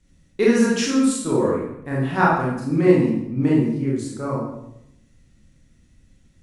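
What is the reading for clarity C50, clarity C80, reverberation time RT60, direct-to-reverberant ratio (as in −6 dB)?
0.5 dB, 4.5 dB, 0.80 s, −6.0 dB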